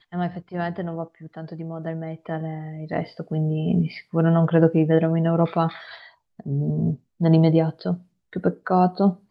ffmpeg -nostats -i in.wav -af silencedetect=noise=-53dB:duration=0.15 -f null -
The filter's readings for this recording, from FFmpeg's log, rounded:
silence_start: 6.15
silence_end: 6.39 | silence_duration: 0.24
silence_start: 7.00
silence_end: 7.20 | silence_duration: 0.20
silence_start: 8.05
silence_end: 8.33 | silence_duration: 0.27